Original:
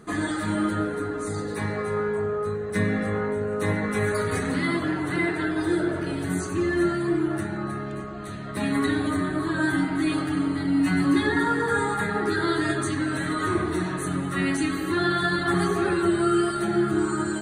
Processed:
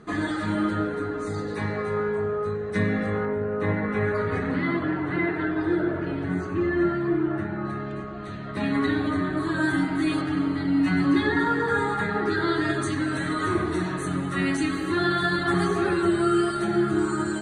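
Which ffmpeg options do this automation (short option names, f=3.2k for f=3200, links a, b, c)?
-af "asetnsamples=n=441:p=0,asendcmd='3.25 lowpass f 2400;7.65 lowpass f 4400;9.37 lowpass f 8500;10.21 lowpass f 5100;12.74 lowpass f 8200',lowpass=5.3k"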